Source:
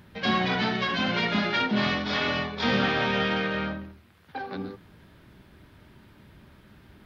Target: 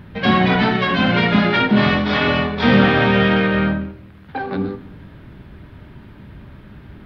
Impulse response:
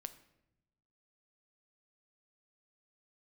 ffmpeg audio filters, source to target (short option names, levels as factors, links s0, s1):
-filter_complex "[0:a]asplit=2[s0][s1];[1:a]atrim=start_sample=2205,lowpass=3800,lowshelf=f=240:g=8.5[s2];[s1][s2]afir=irnorm=-1:irlink=0,volume=3.16[s3];[s0][s3]amix=inputs=2:normalize=0"